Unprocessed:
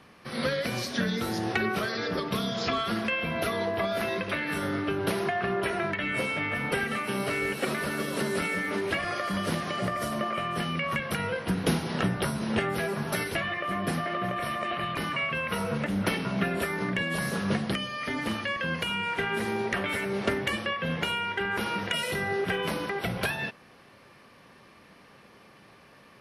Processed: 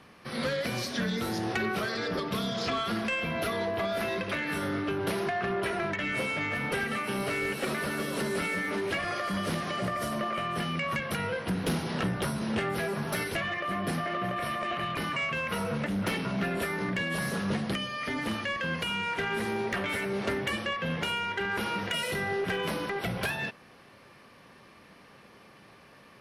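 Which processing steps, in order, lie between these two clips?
soft clip -23 dBFS, distortion -17 dB

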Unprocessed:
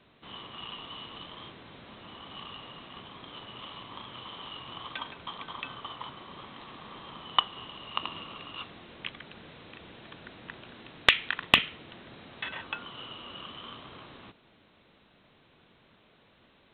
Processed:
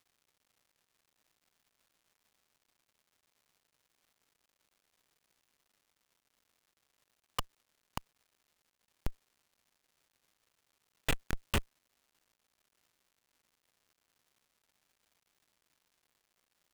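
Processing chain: bit-crush 7-bit; Schmitt trigger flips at -19 dBFS; crackle 350/s -70 dBFS; gain +10.5 dB

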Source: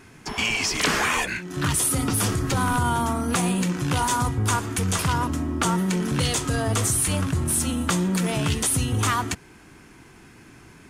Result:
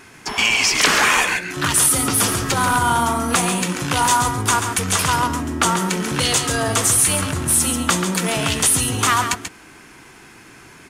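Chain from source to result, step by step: low shelf 330 Hz -10.5 dB; on a send: echo 0.137 s -8 dB; on the sum: gain +7.5 dB

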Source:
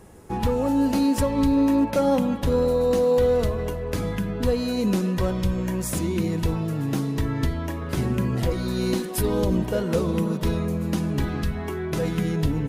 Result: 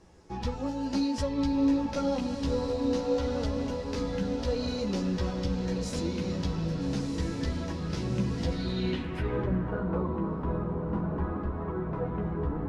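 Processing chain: chorus voices 6, 0.55 Hz, delay 14 ms, depth 3.6 ms; diffused feedback echo 1.305 s, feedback 62%, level -6 dB; low-pass sweep 5300 Hz -> 1100 Hz, 8.45–9.87; gain -6 dB

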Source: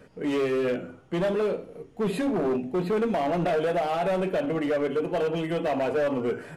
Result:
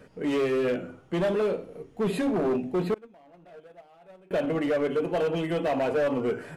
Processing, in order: 2.94–4.31 gate -21 dBFS, range -29 dB

